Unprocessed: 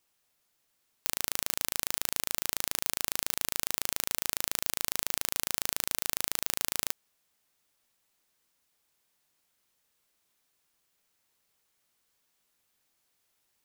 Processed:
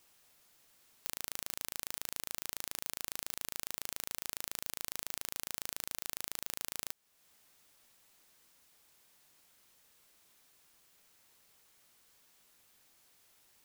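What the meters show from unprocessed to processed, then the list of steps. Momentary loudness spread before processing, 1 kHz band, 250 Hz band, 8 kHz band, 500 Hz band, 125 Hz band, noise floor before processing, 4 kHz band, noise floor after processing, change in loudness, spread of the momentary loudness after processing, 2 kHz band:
1 LU, -9.0 dB, -9.0 dB, -9.0 dB, -9.0 dB, -9.0 dB, -76 dBFS, -9.0 dB, -79 dBFS, -9.0 dB, 1 LU, -9.0 dB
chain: wrapped overs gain 3.5 dB; compressor 2:1, threshold -52 dBFS, peak gain reduction 13 dB; gain +8.5 dB

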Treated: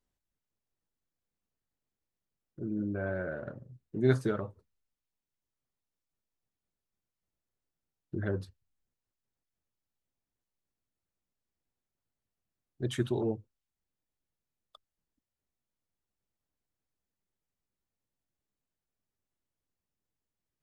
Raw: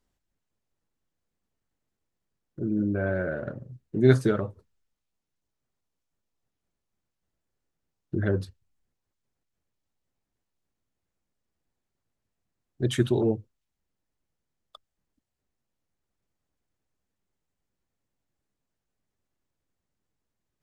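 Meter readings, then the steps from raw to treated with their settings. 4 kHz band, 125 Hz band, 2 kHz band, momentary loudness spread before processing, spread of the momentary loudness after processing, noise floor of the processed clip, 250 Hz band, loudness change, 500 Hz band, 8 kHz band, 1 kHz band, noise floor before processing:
-7.5 dB, -7.5 dB, -6.0 dB, 15 LU, 15 LU, under -85 dBFS, -7.5 dB, -7.0 dB, -7.0 dB, -7.5 dB, -5.0 dB, -84 dBFS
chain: dynamic EQ 970 Hz, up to +4 dB, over -44 dBFS, Q 1.4; gain -7.5 dB

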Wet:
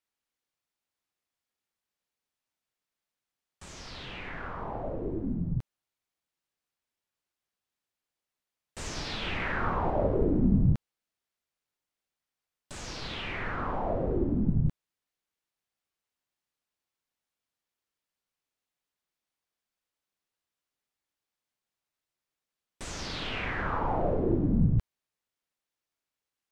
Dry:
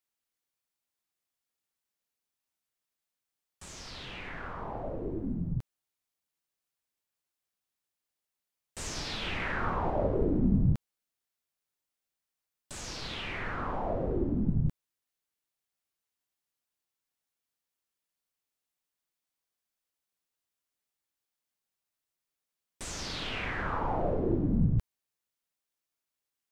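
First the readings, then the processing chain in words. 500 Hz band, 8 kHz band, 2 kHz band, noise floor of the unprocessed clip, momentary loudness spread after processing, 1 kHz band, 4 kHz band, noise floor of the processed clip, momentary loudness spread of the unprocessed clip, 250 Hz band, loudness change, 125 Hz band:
+2.0 dB, -2.5 dB, +1.5 dB, under -85 dBFS, 15 LU, +2.0 dB, 0.0 dB, under -85 dBFS, 14 LU, +2.0 dB, +2.0 dB, +2.0 dB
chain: high shelf 7300 Hz -10 dB; gain +2 dB

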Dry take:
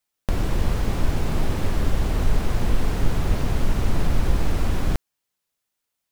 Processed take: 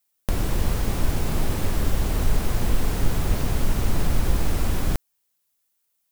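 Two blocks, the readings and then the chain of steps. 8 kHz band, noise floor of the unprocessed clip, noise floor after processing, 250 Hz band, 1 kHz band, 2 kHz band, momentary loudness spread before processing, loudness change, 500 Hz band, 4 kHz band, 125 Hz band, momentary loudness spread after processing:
+5.0 dB, -81 dBFS, -73 dBFS, -1.0 dB, -1.0 dB, -0.5 dB, 2 LU, -0.5 dB, -1.0 dB, +1.0 dB, -1.0 dB, 2 LU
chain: high shelf 7600 Hz +12 dB; gain -1 dB

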